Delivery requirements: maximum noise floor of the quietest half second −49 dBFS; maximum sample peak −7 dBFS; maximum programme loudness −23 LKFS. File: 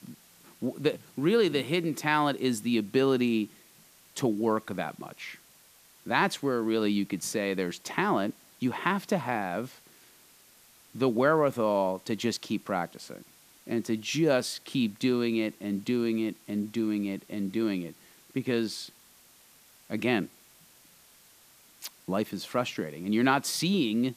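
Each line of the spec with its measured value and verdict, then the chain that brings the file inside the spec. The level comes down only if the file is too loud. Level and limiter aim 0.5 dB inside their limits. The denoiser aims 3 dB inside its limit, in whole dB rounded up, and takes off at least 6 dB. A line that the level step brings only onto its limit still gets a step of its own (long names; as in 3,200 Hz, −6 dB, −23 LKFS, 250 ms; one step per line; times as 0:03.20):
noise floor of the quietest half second −58 dBFS: in spec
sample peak −8.5 dBFS: in spec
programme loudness −29.0 LKFS: in spec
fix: no processing needed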